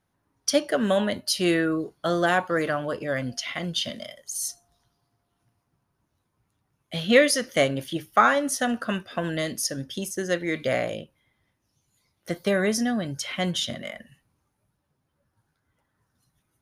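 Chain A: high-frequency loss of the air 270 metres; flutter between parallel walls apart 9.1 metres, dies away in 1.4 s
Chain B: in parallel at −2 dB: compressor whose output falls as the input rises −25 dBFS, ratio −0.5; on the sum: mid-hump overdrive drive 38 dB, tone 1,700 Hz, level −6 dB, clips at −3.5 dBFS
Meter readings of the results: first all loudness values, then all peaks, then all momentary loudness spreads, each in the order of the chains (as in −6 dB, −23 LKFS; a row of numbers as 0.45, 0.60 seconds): −23.0, −13.0 LKFS; −3.5, −4.5 dBFS; 15, 7 LU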